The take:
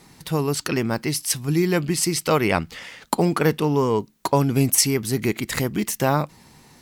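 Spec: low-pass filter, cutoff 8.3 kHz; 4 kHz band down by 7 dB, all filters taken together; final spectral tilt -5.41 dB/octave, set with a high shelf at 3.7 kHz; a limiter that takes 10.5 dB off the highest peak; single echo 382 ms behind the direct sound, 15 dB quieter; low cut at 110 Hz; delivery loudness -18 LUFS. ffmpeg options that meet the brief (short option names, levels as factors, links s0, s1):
-af "highpass=110,lowpass=8300,highshelf=f=3700:g=-3.5,equalizer=f=4000:t=o:g=-6.5,alimiter=limit=0.188:level=0:latency=1,aecho=1:1:382:0.178,volume=2.66"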